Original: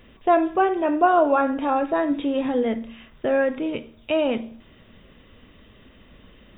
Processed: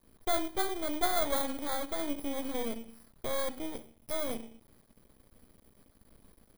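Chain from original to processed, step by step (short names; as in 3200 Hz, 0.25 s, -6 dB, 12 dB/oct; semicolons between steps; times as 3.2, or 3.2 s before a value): FFT order left unsorted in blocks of 16 samples; half-wave rectifier; gain -7.5 dB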